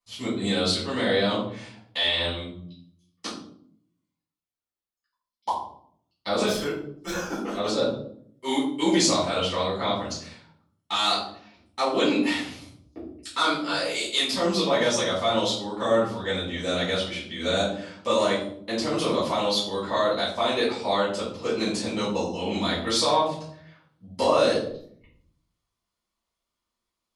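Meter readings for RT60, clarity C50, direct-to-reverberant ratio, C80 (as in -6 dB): 0.60 s, 3.5 dB, -11.5 dB, 8.0 dB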